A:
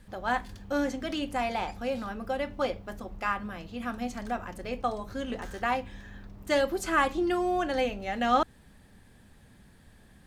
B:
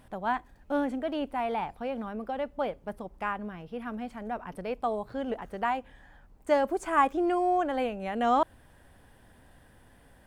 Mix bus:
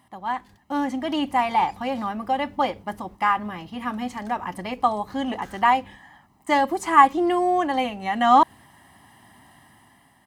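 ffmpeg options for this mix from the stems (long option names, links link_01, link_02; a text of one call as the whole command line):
ffmpeg -i stem1.wav -i stem2.wav -filter_complex "[0:a]volume=-9.5dB[link_01];[1:a]highpass=frequency=260:poles=1,aecho=1:1:1:0.95,volume=-2dB,asplit=2[link_02][link_03];[link_03]apad=whole_len=452817[link_04];[link_01][link_04]sidechaingate=range=-33dB:threshold=-50dB:ratio=16:detection=peak[link_05];[link_05][link_02]amix=inputs=2:normalize=0,highpass=86,dynaudnorm=framelen=250:gausssize=7:maxgain=9.5dB" out.wav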